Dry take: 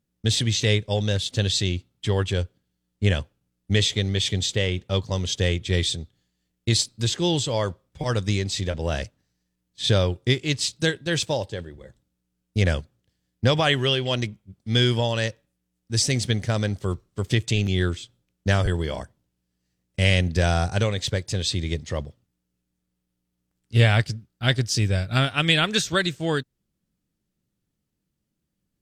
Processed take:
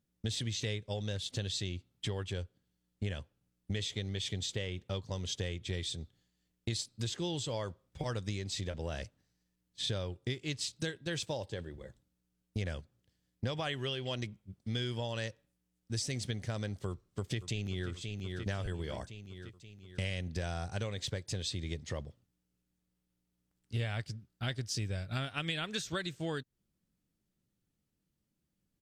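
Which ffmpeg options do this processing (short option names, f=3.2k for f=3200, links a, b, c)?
-filter_complex "[0:a]asplit=2[a][b];[b]afade=t=in:st=16.88:d=0.01,afade=t=out:st=17.9:d=0.01,aecho=0:1:530|1060|1590|2120|2650|3180:0.266073|0.14634|0.0804869|0.0442678|0.0243473|0.013391[c];[a][c]amix=inputs=2:normalize=0,acompressor=threshold=-31dB:ratio=4,volume=-4dB"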